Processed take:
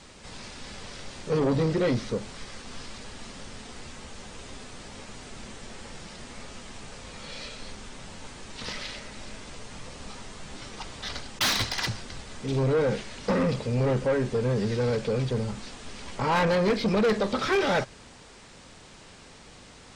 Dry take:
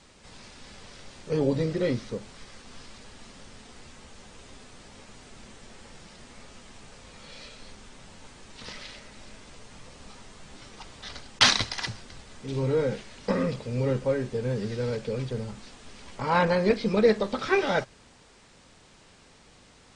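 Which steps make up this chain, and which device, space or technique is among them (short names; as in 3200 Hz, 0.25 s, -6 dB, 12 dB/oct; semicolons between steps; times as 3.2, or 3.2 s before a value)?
saturation between pre-emphasis and de-emphasis (high shelf 4200 Hz +6 dB; soft clip -25.5 dBFS, distortion -6 dB; high shelf 4200 Hz -6 dB); gain +6 dB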